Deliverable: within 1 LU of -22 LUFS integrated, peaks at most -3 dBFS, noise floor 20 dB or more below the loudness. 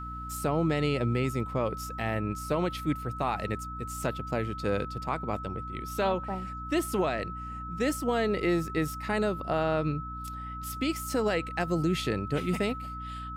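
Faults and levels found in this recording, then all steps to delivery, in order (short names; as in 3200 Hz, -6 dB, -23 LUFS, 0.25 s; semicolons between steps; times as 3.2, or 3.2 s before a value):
hum 60 Hz; harmonics up to 300 Hz; hum level -39 dBFS; steady tone 1300 Hz; tone level -38 dBFS; loudness -30.5 LUFS; peak -17.0 dBFS; loudness target -22.0 LUFS
-> de-hum 60 Hz, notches 5; notch 1300 Hz, Q 30; gain +8.5 dB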